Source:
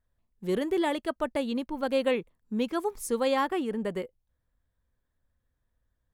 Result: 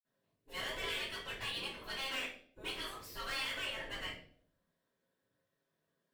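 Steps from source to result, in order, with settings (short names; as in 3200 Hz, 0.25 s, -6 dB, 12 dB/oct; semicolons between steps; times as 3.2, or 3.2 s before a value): 1.86–2.53 HPF 380 Hz 12 dB/oct; spectral gate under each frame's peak -20 dB weak; dynamic EQ 2200 Hz, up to +8 dB, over -55 dBFS, Q 0.87; hard clip -39.5 dBFS, distortion -4 dB; flange 0.79 Hz, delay 8.1 ms, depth 6.4 ms, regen -60%; reverb RT60 0.60 s, pre-delay 46 ms, DRR -60 dB; gain +15 dB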